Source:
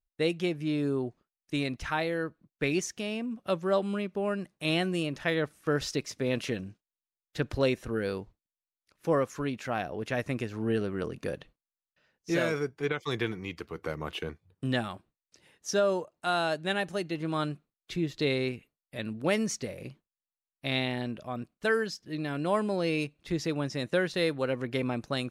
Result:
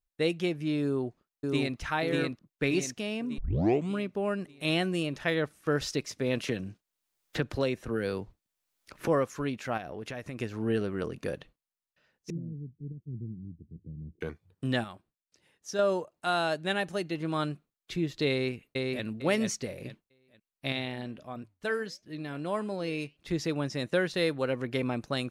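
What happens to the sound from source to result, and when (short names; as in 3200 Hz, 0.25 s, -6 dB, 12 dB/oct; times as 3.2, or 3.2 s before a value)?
0.84–1.79 echo throw 0.59 s, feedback 50%, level -2 dB
3.38 tape start 0.53 s
6.48–9.08 three-band squash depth 70%
9.77–10.39 compressor 5:1, threshold -35 dBFS
12.3–14.21 inverse Chebyshev low-pass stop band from 990 Hz, stop band 70 dB
14.84–15.79 gain -6 dB
18.3–19.04 echo throw 0.45 s, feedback 25%, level -2 dB
20.72–23.17 flange 1.5 Hz, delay 3.5 ms, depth 3.7 ms, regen -89%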